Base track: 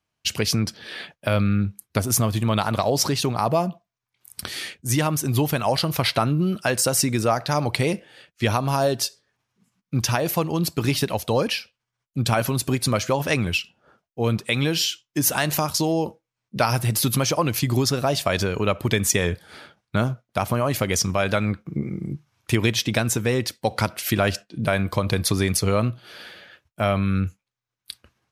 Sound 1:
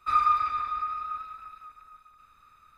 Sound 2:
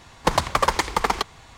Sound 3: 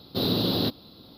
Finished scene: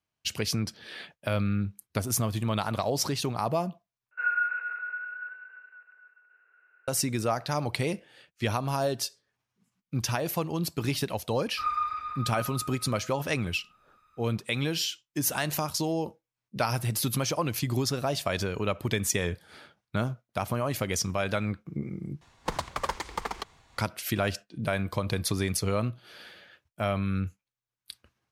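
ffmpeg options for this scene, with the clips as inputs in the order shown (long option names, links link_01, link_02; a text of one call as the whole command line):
ffmpeg -i bed.wav -i cue0.wav -i cue1.wav -filter_complex "[1:a]asplit=2[link_01][link_02];[0:a]volume=-7dB[link_03];[link_01]highpass=frequency=180:width_type=q:width=0.5412,highpass=frequency=180:width_type=q:width=1.307,lowpass=frequency=2200:width_type=q:width=0.5176,lowpass=frequency=2200:width_type=q:width=0.7071,lowpass=frequency=2200:width_type=q:width=1.932,afreqshift=220[link_04];[2:a]tremolo=f=3.1:d=0.32[link_05];[link_03]asplit=3[link_06][link_07][link_08];[link_06]atrim=end=4.114[link_09];[link_04]atrim=end=2.77,asetpts=PTS-STARTPTS,volume=-4.5dB[link_10];[link_07]atrim=start=6.876:end=22.214[link_11];[link_05]atrim=end=1.57,asetpts=PTS-STARTPTS,volume=-10.5dB[link_12];[link_08]atrim=start=23.776[link_13];[link_02]atrim=end=2.77,asetpts=PTS-STARTPTS,volume=-6.5dB,afade=type=in:duration=0.004:curve=hsin,afade=type=out:start_time=2.766:duration=0.004:curve=hsin,adelay=11510[link_14];[link_09][link_10]acrossfade=duration=0.004:curve1=hsin:curve2=hsin[link_15];[link_15][link_11]acrossfade=duration=0.004:curve1=hsin:curve2=hsin[link_16];[link_16][link_12]acrossfade=duration=0.004:curve1=hsin:curve2=hsin[link_17];[link_17][link_13]acrossfade=duration=0.004:curve1=hsin:curve2=hsin[link_18];[link_18][link_14]amix=inputs=2:normalize=0" out.wav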